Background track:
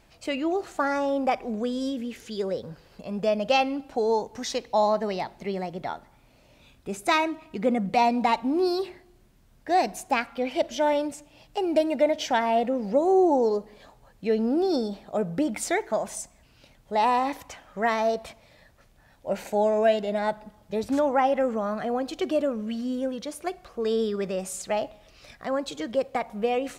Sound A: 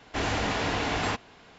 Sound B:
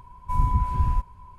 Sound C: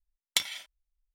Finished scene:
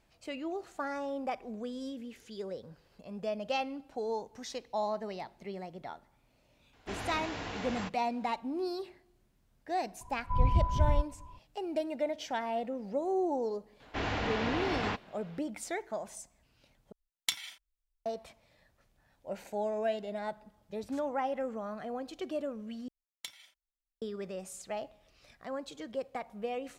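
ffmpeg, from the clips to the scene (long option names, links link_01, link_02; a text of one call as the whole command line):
ffmpeg -i bed.wav -i cue0.wav -i cue1.wav -i cue2.wav -filter_complex "[1:a]asplit=2[link_01][link_02];[3:a]asplit=2[link_03][link_04];[0:a]volume=-11dB[link_05];[2:a]lowpass=1200[link_06];[link_02]lowpass=4100[link_07];[link_03]equalizer=frequency=530:width=3.7:gain=-12.5[link_08];[link_05]asplit=3[link_09][link_10][link_11];[link_09]atrim=end=16.924[link_12];[link_08]atrim=end=1.14,asetpts=PTS-STARTPTS,volume=-5dB[link_13];[link_10]atrim=start=18.056:end=22.884[link_14];[link_04]atrim=end=1.14,asetpts=PTS-STARTPTS,volume=-17dB[link_15];[link_11]atrim=start=24.016[link_16];[link_01]atrim=end=1.58,asetpts=PTS-STARTPTS,volume=-11.5dB,afade=type=in:duration=0.004:curve=hsin,afade=type=out:start_time=1.576:duration=0.004:curve=hsin,adelay=6730[link_17];[link_06]atrim=end=1.38,asetpts=PTS-STARTPTS,volume=-4dB,afade=type=in:duration=0.004:curve=hsin,afade=type=out:start_time=1.376:duration=0.004:curve=hsin,adelay=10010[link_18];[link_07]atrim=end=1.58,asetpts=PTS-STARTPTS,volume=-5dB,afade=type=in:duration=0.004:curve=hsin,afade=type=out:start_time=1.576:duration=0.004:curve=hsin,adelay=608580S[link_19];[link_12][link_13]acrossfade=duration=0.004:curve1=hsin:curve2=hsin[link_20];[link_20][link_14]acrossfade=duration=0.004:curve1=hsin:curve2=hsin[link_21];[link_21][link_15]acrossfade=duration=0.004:curve1=hsin:curve2=hsin[link_22];[link_22][link_16]acrossfade=duration=0.004:curve1=hsin:curve2=hsin[link_23];[link_23][link_17][link_18][link_19]amix=inputs=4:normalize=0" out.wav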